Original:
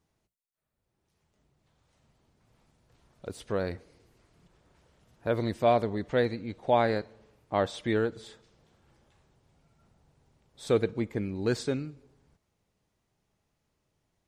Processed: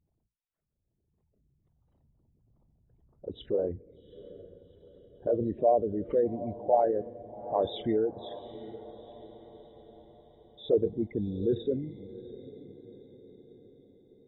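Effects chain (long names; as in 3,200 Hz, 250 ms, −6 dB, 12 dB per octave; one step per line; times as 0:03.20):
spectral envelope exaggerated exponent 3
feedback delay with all-pass diffusion 764 ms, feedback 50%, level −15.5 dB
AAC 16 kbit/s 22,050 Hz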